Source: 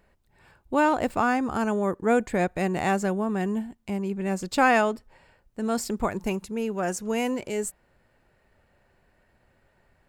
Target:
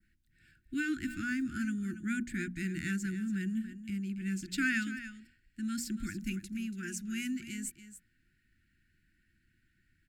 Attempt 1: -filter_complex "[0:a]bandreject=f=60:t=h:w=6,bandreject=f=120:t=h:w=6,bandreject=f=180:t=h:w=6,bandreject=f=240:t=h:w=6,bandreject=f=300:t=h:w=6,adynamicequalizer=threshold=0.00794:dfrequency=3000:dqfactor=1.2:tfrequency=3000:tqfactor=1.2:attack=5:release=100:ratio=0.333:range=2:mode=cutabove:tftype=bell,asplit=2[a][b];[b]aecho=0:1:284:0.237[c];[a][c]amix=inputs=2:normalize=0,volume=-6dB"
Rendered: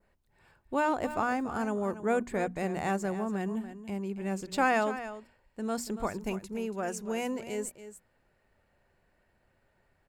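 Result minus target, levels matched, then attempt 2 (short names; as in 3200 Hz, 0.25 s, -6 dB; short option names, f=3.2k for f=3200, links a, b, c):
500 Hz band +16.5 dB
-filter_complex "[0:a]bandreject=f=60:t=h:w=6,bandreject=f=120:t=h:w=6,bandreject=f=180:t=h:w=6,bandreject=f=240:t=h:w=6,bandreject=f=300:t=h:w=6,adynamicequalizer=threshold=0.00794:dfrequency=3000:dqfactor=1.2:tfrequency=3000:tqfactor=1.2:attack=5:release=100:ratio=0.333:range=2:mode=cutabove:tftype=bell,asuperstop=centerf=700:order=20:qfactor=0.65,asplit=2[a][b];[b]aecho=0:1:284:0.237[c];[a][c]amix=inputs=2:normalize=0,volume=-6dB"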